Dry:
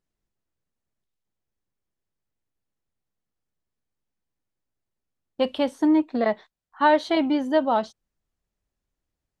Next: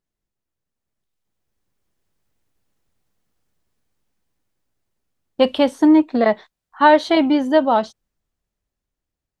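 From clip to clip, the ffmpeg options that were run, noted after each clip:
-af "dynaudnorm=f=270:g=11:m=5.01,volume=0.891"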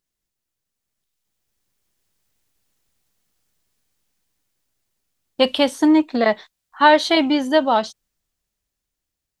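-af "highshelf=f=2000:g=11,volume=0.75"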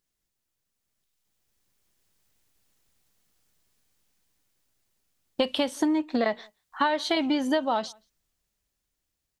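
-filter_complex "[0:a]acompressor=threshold=0.0891:ratio=16,asplit=2[s0][s1];[s1]adelay=174.9,volume=0.0355,highshelf=f=4000:g=-3.94[s2];[s0][s2]amix=inputs=2:normalize=0"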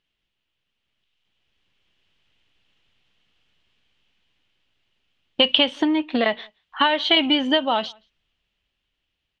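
-af "lowpass=f=3000:t=q:w=4.5,volume=1.5"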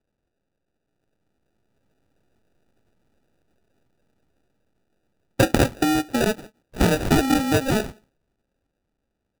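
-af "acrusher=samples=41:mix=1:aa=0.000001"

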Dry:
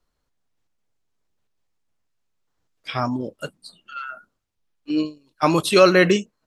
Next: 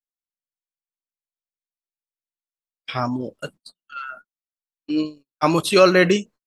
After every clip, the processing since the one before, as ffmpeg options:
-af "agate=range=0.0126:threshold=0.00891:ratio=16:detection=peak"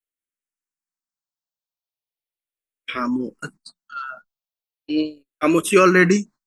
-filter_complex "[0:a]asplit=2[s0][s1];[s1]afreqshift=-0.38[s2];[s0][s2]amix=inputs=2:normalize=1,volume=1.58"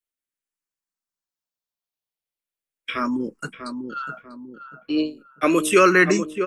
-filter_complex "[0:a]acrossover=split=310|940|4100[s0][s1][s2][s3];[s0]alimiter=limit=0.0668:level=0:latency=1[s4];[s4][s1][s2][s3]amix=inputs=4:normalize=0,asplit=2[s5][s6];[s6]adelay=644,lowpass=f=1100:p=1,volume=0.447,asplit=2[s7][s8];[s8]adelay=644,lowpass=f=1100:p=1,volume=0.42,asplit=2[s9][s10];[s10]adelay=644,lowpass=f=1100:p=1,volume=0.42,asplit=2[s11][s12];[s12]adelay=644,lowpass=f=1100:p=1,volume=0.42,asplit=2[s13][s14];[s14]adelay=644,lowpass=f=1100:p=1,volume=0.42[s15];[s5][s7][s9][s11][s13][s15]amix=inputs=6:normalize=0"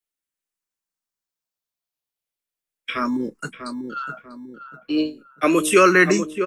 -filter_complex "[0:a]acrossover=split=130|550|4000[s0][s1][s2][s3];[s0]acrusher=samples=23:mix=1:aa=0.000001[s4];[s3]asplit=2[s5][s6];[s6]adelay=23,volume=0.562[s7];[s5][s7]amix=inputs=2:normalize=0[s8];[s4][s1][s2][s8]amix=inputs=4:normalize=0,volume=1.12"

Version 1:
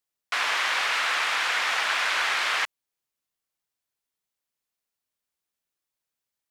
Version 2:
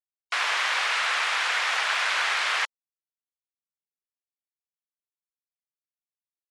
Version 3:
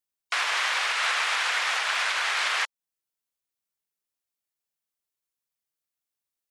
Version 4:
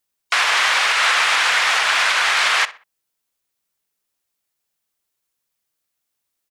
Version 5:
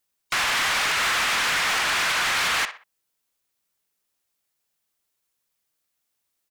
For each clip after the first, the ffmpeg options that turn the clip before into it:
-af "highpass=400,afftfilt=real='re*gte(hypot(re,im),0.00398)':imag='im*gte(hypot(re,im),0.00398)':win_size=1024:overlap=0.75"
-af "highshelf=f=6800:g=5,alimiter=limit=0.0944:level=0:latency=1:release=330,volume=1.68"
-filter_complex "[0:a]asplit=2[s0][s1];[s1]asoftclip=type=hard:threshold=0.0299,volume=0.299[s2];[s0][s2]amix=inputs=2:normalize=0,asplit=2[s3][s4];[s4]adelay=62,lowpass=f=3100:p=1,volume=0.158,asplit=2[s5][s6];[s6]adelay=62,lowpass=f=3100:p=1,volume=0.35,asplit=2[s7][s8];[s8]adelay=62,lowpass=f=3100:p=1,volume=0.35[s9];[s3][s5][s7][s9]amix=inputs=4:normalize=0,volume=2.51"
-af "asoftclip=type=tanh:threshold=0.0944"

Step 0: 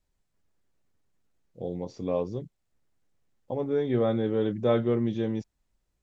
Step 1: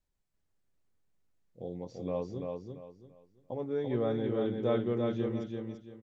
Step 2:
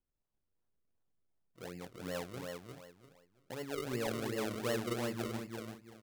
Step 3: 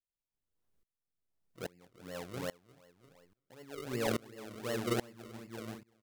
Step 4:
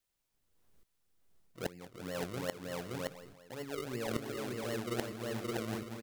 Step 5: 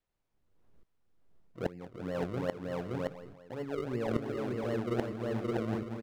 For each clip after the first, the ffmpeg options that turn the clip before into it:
-af "aecho=1:1:339|678|1017|1356:0.631|0.177|0.0495|0.0139,volume=0.473"
-af "acrusher=samples=36:mix=1:aa=0.000001:lfo=1:lforange=36:lforate=2.7,volume=0.501"
-af "aeval=exprs='val(0)*pow(10,-26*if(lt(mod(-1.2*n/s,1),2*abs(-1.2)/1000),1-mod(-1.2*n/s,1)/(2*abs(-1.2)/1000),(mod(-1.2*n/s,1)-2*abs(-1.2)/1000)/(1-2*abs(-1.2)/1000))/20)':c=same,volume=2.24"
-af "aecho=1:1:571:0.422,areverse,acompressor=threshold=0.00562:ratio=10,areverse,volume=3.55"
-af "lowpass=f=1000:p=1,volume=1.88"

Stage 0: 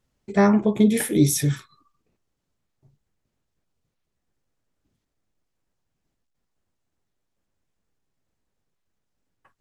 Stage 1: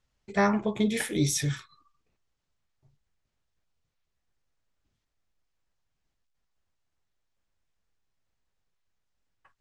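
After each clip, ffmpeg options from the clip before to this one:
-af "lowpass=6900,equalizer=f=260:t=o:w=2.6:g=-9.5"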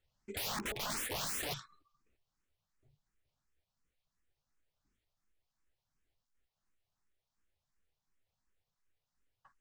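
-filter_complex "[0:a]aeval=exprs='(mod(29.9*val(0)+1,2)-1)/29.9':c=same,asplit=2[s0][s1];[s1]afreqshift=2.8[s2];[s0][s2]amix=inputs=2:normalize=1,volume=0.891"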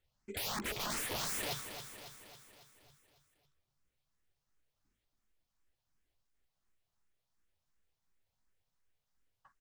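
-af "aecho=1:1:275|550|825|1100|1375|1650|1925:0.355|0.202|0.115|0.0657|0.0375|0.0213|0.0122"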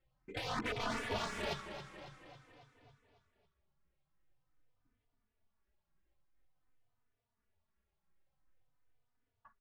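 -filter_complex "[0:a]adynamicsmooth=sensitivity=3.5:basefreq=2500,asplit=2[s0][s1];[s1]adelay=3.3,afreqshift=-0.48[s2];[s0][s2]amix=inputs=2:normalize=1,volume=2.11"

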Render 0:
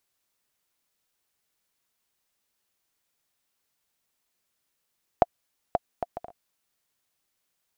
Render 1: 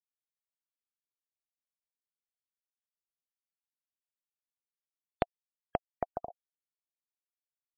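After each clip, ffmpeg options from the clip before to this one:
-filter_complex "[0:a]acrossover=split=2200[s0][s1];[s0]acompressor=threshold=0.0355:ratio=6[s2];[s2][s1]amix=inputs=2:normalize=0,afftfilt=real='re*gte(hypot(re,im),0.00631)':imag='im*gte(hypot(re,im),0.00631)':win_size=1024:overlap=0.75,volume=1.19"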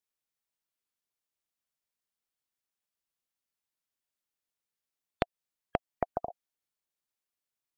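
-af "acompressor=threshold=0.0398:ratio=6,volume=1.68"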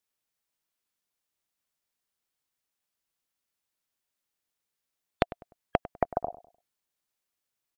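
-filter_complex "[0:a]asplit=2[s0][s1];[s1]adelay=100,lowpass=f=1300:p=1,volume=0.158,asplit=2[s2][s3];[s3]adelay=100,lowpass=f=1300:p=1,volume=0.33,asplit=2[s4][s5];[s5]adelay=100,lowpass=f=1300:p=1,volume=0.33[s6];[s0][s2][s4][s6]amix=inputs=4:normalize=0,volume=1.68"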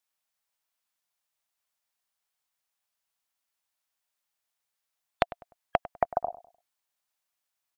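-af "lowshelf=f=540:t=q:w=1.5:g=-7,volume=1.12"

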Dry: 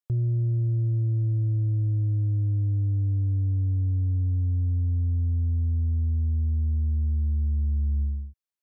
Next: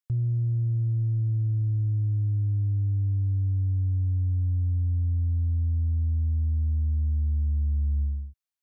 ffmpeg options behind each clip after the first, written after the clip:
-af "equalizer=f=420:t=o:w=1.4:g=-10.5"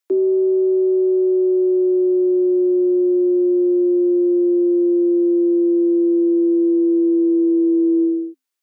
-af "afreqshift=260,acontrast=36,volume=1.5"

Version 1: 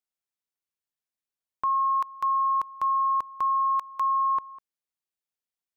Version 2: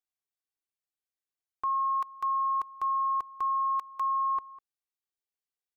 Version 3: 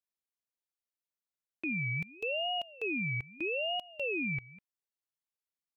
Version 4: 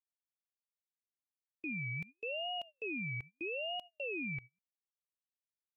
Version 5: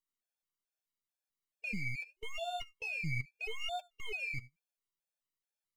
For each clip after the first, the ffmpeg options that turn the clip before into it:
-af "aecho=1:1:2.6:0.65,volume=0.473"
-af "aeval=exprs='val(0)*sin(2*PI*1500*n/s+1500*0.2/0.79*sin(2*PI*0.79*n/s))':c=same,volume=0.75"
-af "agate=range=0.0282:threshold=0.00794:ratio=16:detection=peak,volume=0.531"
-af "aeval=exprs='if(lt(val(0),0),0.251*val(0),val(0))':c=same,flanger=delay=6.3:depth=4.9:regen=29:speed=1.3:shape=sinusoidal,afftfilt=real='re*gt(sin(2*PI*2.3*pts/sr)*(1-2*mod(floor(b*sr/1024/460),2)),0)':imag='im*gt(sin(2*PI*2.3*pts/sr)*(1-2*mod(floor(b*sr/1024/460),2)),0)':win_size=1024:overlap=0.75,volume=3.35"

